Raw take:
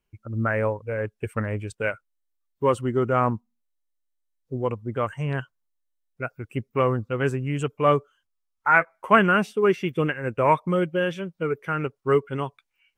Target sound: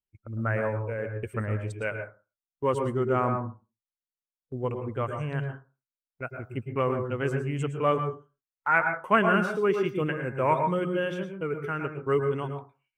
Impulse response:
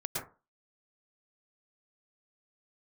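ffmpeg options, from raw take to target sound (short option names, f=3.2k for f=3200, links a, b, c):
-filter_complex "[0:a]agate=range=-13dB:threshold=-41dB:ratio=16:detection=peak,asplit=2[a][b];[1:a]atrim=start_sample=2205[c];[b][c]afir=irnorm=-1:irlink=0,volume=-5.5dB[d];[a][d]amix=inputs=2:normalize=0,volume=-8dB"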